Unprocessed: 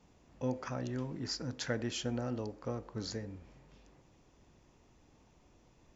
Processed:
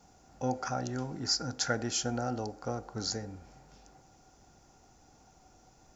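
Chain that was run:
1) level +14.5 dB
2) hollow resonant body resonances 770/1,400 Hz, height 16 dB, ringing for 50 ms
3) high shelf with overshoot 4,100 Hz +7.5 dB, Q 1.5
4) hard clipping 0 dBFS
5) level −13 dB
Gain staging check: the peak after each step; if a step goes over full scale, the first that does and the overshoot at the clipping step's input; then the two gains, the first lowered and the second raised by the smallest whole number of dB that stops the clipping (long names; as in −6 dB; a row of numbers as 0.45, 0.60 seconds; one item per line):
−4.5, −2.5, −3.0, −3.0, −16.0 dBFS
no step passes full scale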